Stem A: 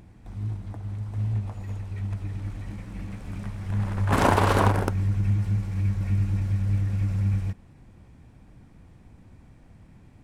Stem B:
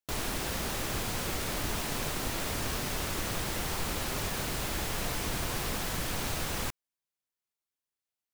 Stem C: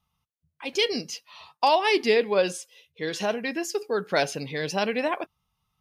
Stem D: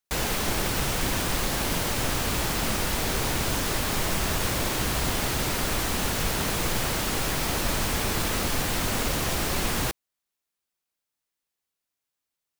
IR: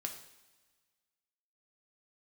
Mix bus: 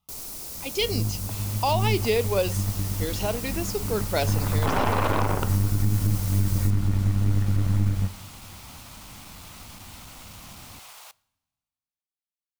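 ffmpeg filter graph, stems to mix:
-filter_complex "[0:a]highshelf=frequency=2200:width_type=q:width=3:gain=-6.5,aeval=exprs='0.596*(cos(1*acos(clip(val(0)/0.596,-1,1)))-cos(1*PI/2))+0.106*(cos(6*acos(clip(val(0)/0.596,-1,1)))-cos(6*PI/2))':channel_layout=same,adelay=550,volume=-0.5dB,asplit=2[link_01][link_02];[link_02]volume=-3dB[link_03];[1:a]aexciter=amount=2.7:drive=7.9:freq=4500,volume=-11.5dB[link_04];[2:a]volume=-1.5dB[link_05];[3:a]aeval=exprs='clip(val(0),-1,0.075)':channel_layout=same,highpass=frequency=720:width=0.5412,highpass=frequency=720:width=1.3066,adelay=1200,volume=-16dB,asplit=2[link_06][link_07];[link_07]volume=-14.5dB[link_08];[4:a]atrim=start_sample=2205[link_09];[link_03][link_08]amix=inputs=2:normalize=0[link_10];[link_10][link_09]afir=irnorm=-1:irlink=0[link_11];[link_01][link_04][link_05][link_06][link_11]amix=inputs=5:normalize=0,equalizer=frequency=1700:width=3.6:gain=-8.5,alimiter=limit=-12dB:level=0:latency=1:release=77"

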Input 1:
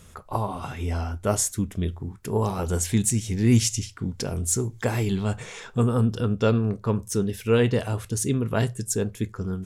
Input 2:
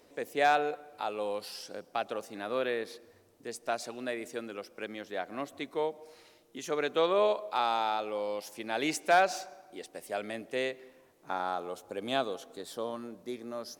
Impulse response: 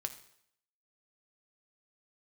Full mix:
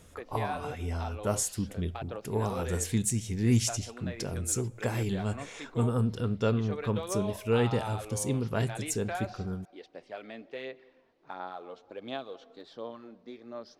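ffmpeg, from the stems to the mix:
-filter_complex "[0:a]volume=-7.5dB,asplit=2[link_01][link_02];[link_02]volume=-14dB[link_03];[1:a]lowpass=frequency=4700:width=0.5412,lowpass=frequency=4700:width=1.3066,acompressor=threshold=-33dB:ratio=2,aphaser=in_gain=1:out_gain=1:delay=4.5:decay=0.39:speed=1.4:type=sinusoidal,volume=-5.5dB[link_04];[2:a]atrim=start_sample=2205[link_05];[link_03][link_05]afir=irnorm=-1:irlink=0[link_06];[link_01][link_04][link_06]amix=inputs=3:normalize=0"

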